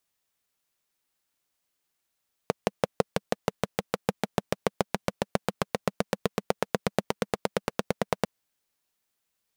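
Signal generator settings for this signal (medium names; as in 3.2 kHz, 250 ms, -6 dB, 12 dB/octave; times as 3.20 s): single-cylinder engine model, changing speed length 5.75 s, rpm 700, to 1100, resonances 200/470 Hz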